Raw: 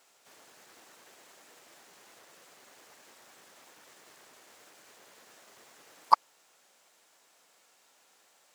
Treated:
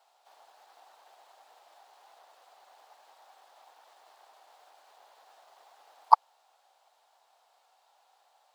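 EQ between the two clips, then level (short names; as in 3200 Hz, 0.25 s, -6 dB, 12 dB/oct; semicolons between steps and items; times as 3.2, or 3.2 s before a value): resonant high-pass 770 Hz, resonance Q 4.1; bell 2100 Hz -8 dB 1.3 oct; resonant high shelf 5100 Hz -7 dB, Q 1.5; -3.0 dB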